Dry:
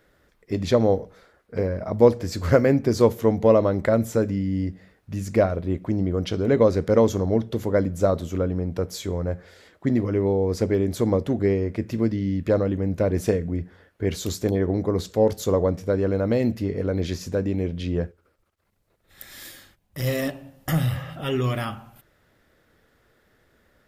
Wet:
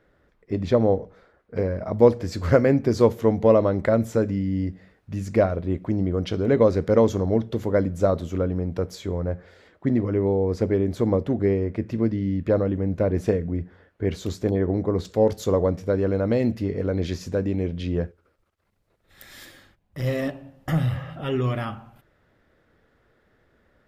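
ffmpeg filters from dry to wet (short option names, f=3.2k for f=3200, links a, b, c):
-af "asetnsamples=n=441:p=0,asendcmd='1.56 lowpass f 4600;8.95 lowpass f 2300;15.05 lowpass f 5500;19.45 lowpass f 2200',lowpass=f=1.7k:p=1"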